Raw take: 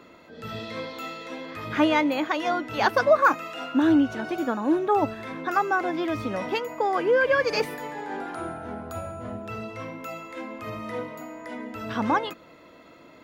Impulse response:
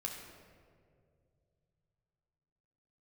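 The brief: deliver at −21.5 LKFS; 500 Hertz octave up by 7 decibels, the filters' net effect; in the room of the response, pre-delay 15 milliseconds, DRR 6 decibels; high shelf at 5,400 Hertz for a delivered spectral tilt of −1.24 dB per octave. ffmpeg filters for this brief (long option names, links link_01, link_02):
-filter_complex "[0:a]equalizer=frequency=500:width_type=o:gain=8.5,highshelf=frequency=5400:gain=-6,asplit=2[link_01][link_02];[1:a]atrim=start_sample=2205,adelay=15[link_03];[link_02][link_03]afir=irnorm=-1:irlink=0,volume=-6dB[link_04];[link_01][link_04]amix=inputs=2:normalize=0,volume=-1dB"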